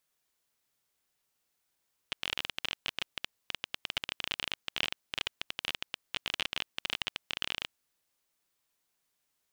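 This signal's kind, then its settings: random clicks 22 per s -14.5 dBFS 5.61 s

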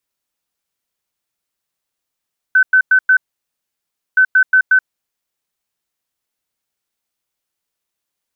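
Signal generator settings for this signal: beep pattern sine 1.52 kHz, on 0.08 s, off 0.10 s, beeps 4, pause 1.00 s, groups 2, -6.5 dBFS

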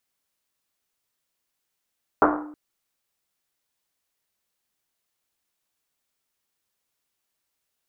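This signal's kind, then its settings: Risset drum length 0.32 s, pitch 300 Hz, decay 0.90 s, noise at 890 Hz, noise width 1 kHz, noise 55%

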